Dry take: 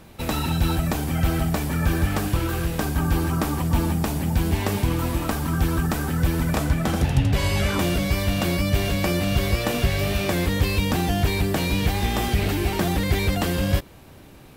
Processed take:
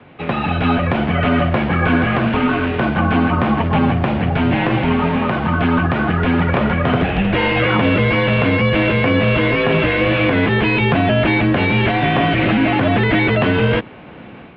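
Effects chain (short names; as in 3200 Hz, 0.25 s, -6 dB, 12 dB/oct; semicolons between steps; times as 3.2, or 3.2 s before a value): vibrato 0.37 Hz 6.5 cents; AGC gain up to 7.5 dB; mistuned SSB -78 Hz 200–3100 Hz; maximiser +11 dB; gain -4.5 dB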